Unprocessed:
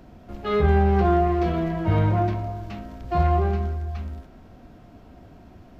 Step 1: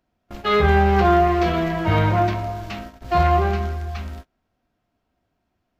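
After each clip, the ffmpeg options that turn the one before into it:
ffmpeg -i in.wav -af "agate=range=-29dB:threshold=-36dB:ratio=16:detection=peak,tiltshelf=frequency=770:gain=-5.5,volume=6dB" out.wav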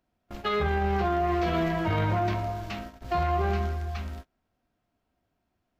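ffmpeg -i in.wav -af "alimiter=limit=-14.5dB:level=0:latency=1:release=11,volume=-4dB" out.wav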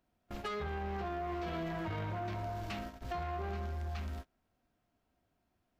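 ffmpeg -i in.wav -af "acompressor=threshold=-31dB:ratio=6,asoftclip=type=tanh:threshold=-31.5dB,volume=-1.5dB" out.wav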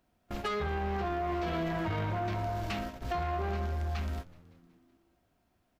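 ffmpeg -i in.wav -filter_complex "[0:a]asplit=6[link_01][link_02][link_03][link_04][link_05][link_06];[link_02]adelay=187,afreqshift=-83,volume=-22dB[link_07];[link_03]adelay=374,afreqshift=-166,volume=-26dB[link_08];[link_04]adelay=561,afreqshift=-249,volume=-30dB[link_09];[link_05]adelay=748,afreqshift=-332,volume=-34dB[link_10];[link_06]adelay=935,afreqshift=-415,volume=-38.1dB[link_11];[link_01][link_07][link_08][link_09][link_10][link_11]amix=inputs=6:normalize=0,volume=5.5dB" out.wav

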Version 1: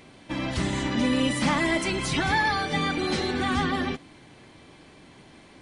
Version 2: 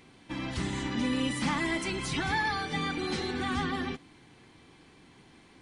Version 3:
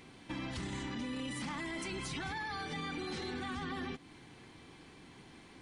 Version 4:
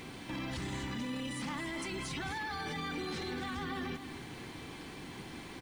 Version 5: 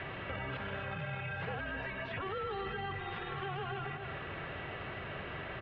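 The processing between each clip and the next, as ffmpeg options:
ffmpeg -i in.wav -af "equalizer=frequency=600:width=6.4:gain=-10,volume=-5.5dB" out.wav
ffmpeg -i in.wav -af "alimiter=level_in=2.5dB:limit=-24dB:level=0:latency=1:release=18,volume=-2.5dB,acompressor=threshold=-41dB:ratio=2.5,volume=1dB" out.wav
ffmpeg -i in.wav -af "alimiter=level_in=16.5dB:limit=-24dB:level=0:latency=1:release=17,volume=-16.5dB,acrusher=bits=11:mix=0:aa=0.000001,aecho=1:1:259:0.282,volume=9dB" out.wav
ffmpeg -i in.wav -filter_complex "[0:a]highpass=frequency=240:width_type=q:width=0.5412,highpass=frequency=240:width_type=q:width=1.307,lowpass=frequency=3400:width_type=q:width=0.5176,lowpass=frequency=3400:width_type=q:width=0.7071,lowpass=frequency=3400:width_type=q:width=1.932,afreqshift=-390,acrossover=split=350|1800[link_01][link_02][link_03];[link_01]acompressor=threshold=-47dB:ratio=4[link_04];[link_02]acompressor=threshold=-51dB:ratio=4[link_05];[link_03]acompressor=threshold=-59dB:ratio=4[link_06];[link_04][link_05][link_06]amix=inputs=3:normalize=0,highpass=frequency=160:poles=1,volume=10dB" out.wav

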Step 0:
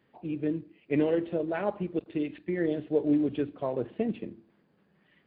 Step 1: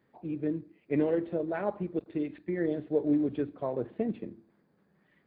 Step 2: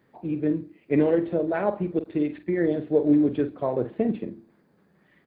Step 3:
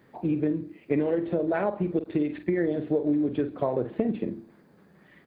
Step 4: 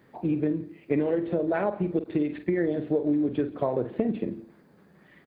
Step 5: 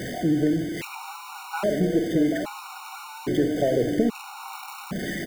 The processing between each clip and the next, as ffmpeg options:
ffmpeg -i in.wav -af "equalizer=frequency=2900:width=2.7:gain=-9.5,volume=-1.5dB" out.wav
ffmpeg -i in.wav -filter_complex "[0:a]asplit=2[link_01][link_02];[link_02]adelay=47,volume=-12dB[link_03];[link_01][link_03]amix=inputs=2:normalize=0,volume=6.5dB" out.wav
ffmpeg -i in.wav -af "acompressor=threshold=-28dB:ratio=6,volume=5.5dB" out.wav
ffmpeg -i in.wav -af "aecho=1:1:172:0.0708" out.wav
ffmpeg -i in.wav -af "aeval=exprs='val(0)+0.5*0.0422*sgn(val(0))':channel_layout=same,aecho=1:1:805:0.376,afftfilt=real='re*gt(sin(2*PI*0.61*pts/sr)*(1-2*mod(floor(b*sr/1024/740),2)),0)':imag='im*gt(sin(2*PI*0.61*pts/sr)*(1-2*mod(floor(b*sr/1024/740),2)),0)':win_size=1024:overlap=0.75,volume=2dB" out.wav

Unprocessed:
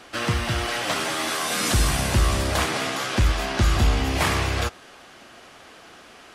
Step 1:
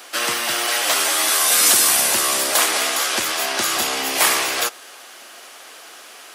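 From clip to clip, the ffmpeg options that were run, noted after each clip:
ffmpeg -i in.wav -af "highpass=330,aemphasis=mode=production:type=bsi,volume=4dB" out.wav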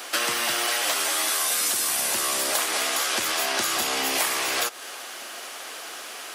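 ffmpeg -i in.wav -af "acompressor=threshold=-25dB:ratio=10,volume=3.5dB" out.wav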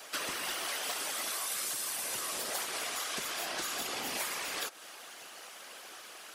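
ffmpeg -i in.wav -af "afftfilt=real='hypot(re,im)*cos(2*PI*random(0))':imag='hypot(re,im)*sin(2*PI*random(1))':win_size=512:overlap=0.75,volume=-5.5dB" out.wav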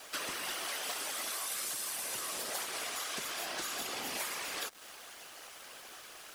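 ffmpeg -i in.wav -af "acrusher=bits=7:mix=0:aa=0.5,volume=-2dB" out.wav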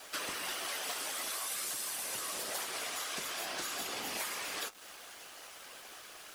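ffmpeg -i in.wav -af "flanger=delay=9.4:depth=1.9:regen=-57:speed=0.48:shape=triangular,volume=4dB" out.wav

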